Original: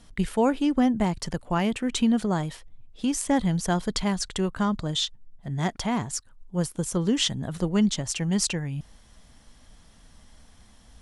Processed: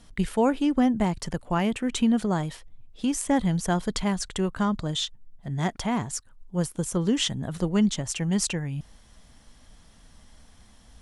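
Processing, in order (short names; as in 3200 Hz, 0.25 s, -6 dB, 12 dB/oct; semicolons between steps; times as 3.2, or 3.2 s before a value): dynamic EQ 4600 Hz, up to -4 dB, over -44 dBFS, Q 1.7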